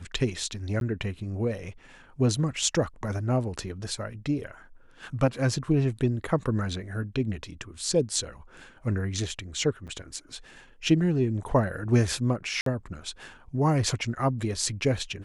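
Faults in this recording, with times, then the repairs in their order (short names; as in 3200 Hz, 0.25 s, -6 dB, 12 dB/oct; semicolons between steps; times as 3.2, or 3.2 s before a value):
0.8–0.81 gap 12 ms
9.87–9.88 gap 7.5 ms
12.61–12.66 gap 53 ms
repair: interpolate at 0.8, 12 ms; interpolate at 9.87, 7.5 ms; interpolate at 12.61, 53 ms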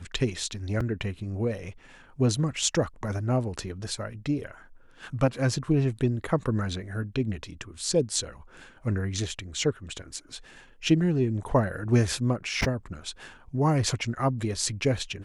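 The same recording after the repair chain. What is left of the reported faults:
none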